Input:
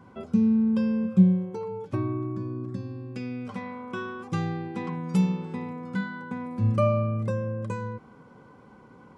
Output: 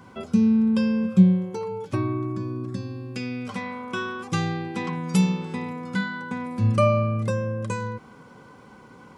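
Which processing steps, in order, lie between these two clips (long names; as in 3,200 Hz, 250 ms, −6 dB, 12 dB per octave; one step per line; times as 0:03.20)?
high-shelf EQ 2,000 Hz +10.5 dB
level +2.5 dB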